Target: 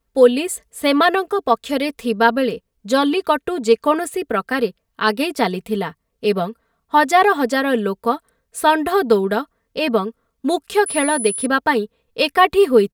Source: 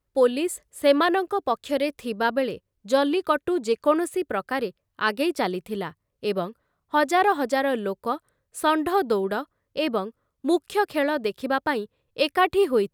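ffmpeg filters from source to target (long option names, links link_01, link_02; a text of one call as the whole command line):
ffmpeg -i in.wav -filter_complex "[0:a]aecho=1:1:4.4:0.63,asettb=1/sr,asplit=3[link_01][link_02][link_03];[link_01]atrim=end=10.864[link_04];[link_02]atrim=start=10.86:end=11.46,asetpts=PTS-STARTPTS,afade=type=in:duration=0.004:curve=qsin,afade=type=out:start_time=0.596:duration=0.004:curve=qsin,aeval=exprs='val(0)+0.0355*sin(2*PI*10000*n/s)':channel_layout=same[link_05];[link_03]atrim=start=11.456[link_06];[link_04][link_05]acrossfade=duration=0.004:curve1=hsin:curve2=qsin[link_07];[link_07][link_06]acrossfade=duration=0.004:curve1=qsin:curve2=hsin,volume=5.5dB" out.wav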